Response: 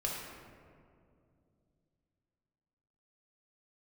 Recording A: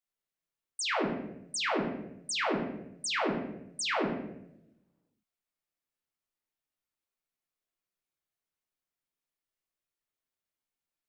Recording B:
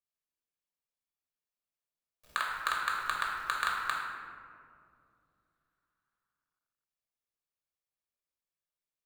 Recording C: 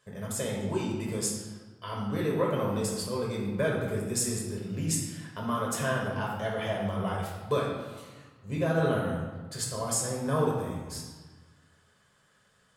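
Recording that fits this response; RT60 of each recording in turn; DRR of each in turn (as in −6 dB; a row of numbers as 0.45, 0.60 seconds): B; 0.80, 2.4, 1.4 seconds; −2.0, −3.0, −4.0 decibels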